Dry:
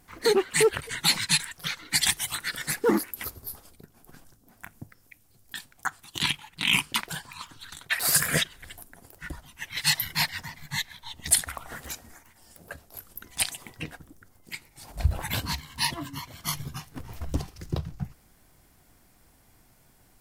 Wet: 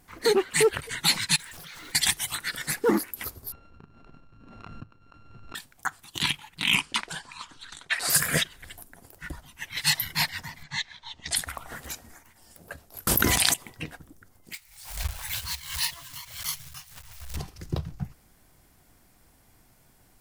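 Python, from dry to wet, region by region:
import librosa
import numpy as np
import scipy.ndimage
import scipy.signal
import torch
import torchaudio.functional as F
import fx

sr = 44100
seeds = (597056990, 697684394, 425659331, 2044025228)

y = fx.chain(x, sr, fx.zero_step(step_db=-36.0),
    fx.level_steps(step_db=22), at=(1.35, 1.96))
y = fx.chain(y, sr, fx.sample_sort(block=32),
    fx.spacing_loss(db_at_10k=33),
    fx.pre_swell(db_per_s=30.0), at=(3.52, 5.55))
y = fx.chain(y, sr, fx.lowpass(hz=9100.0, slope=24),
    fx.peak_eq(hz=110.0, db=-8.5, octaves=1.2), at=(6.75, 8.1))
y = fx.chain(y, sr, fx.lowpass(hz=6400.0, slope=24),
    fx.low_shelf(hz=400.0, db=-6.5), at=(10.63, 11.36))
y = fx.chain(y, sr, fx.highpass(hz=56.0, slope=12),
    fx.env_flatten(amount_pct=100), at=(13.07, 13.54))
y = fx.chain(y, sr, fx.block_float(bits=3),
    fx.tone_stack(knobs='10-0-10'),
    fx.pre_swell(db_per_s=90.0), at=(14.53, 17.37))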